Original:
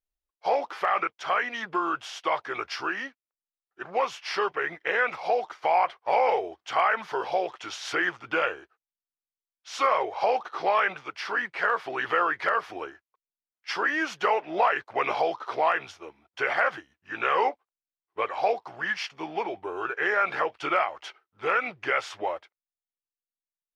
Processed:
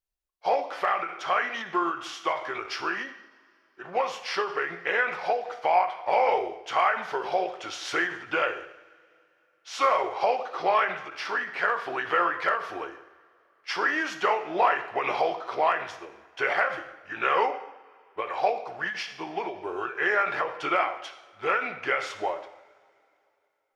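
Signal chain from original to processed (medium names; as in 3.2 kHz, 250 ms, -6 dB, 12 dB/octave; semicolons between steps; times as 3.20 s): two-slope reverb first 0.76 s, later 3 s, from -21 dB, DRR 7 dB; endings held to a fixed fall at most 120 dB/s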